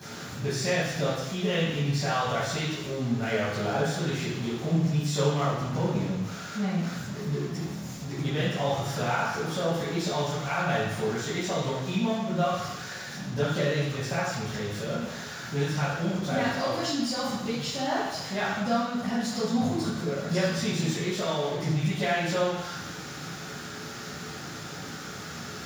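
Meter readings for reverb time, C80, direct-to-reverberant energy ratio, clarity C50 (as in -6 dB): 1.1 s, 2.5 dB, -12.5 dB, -0.5 dB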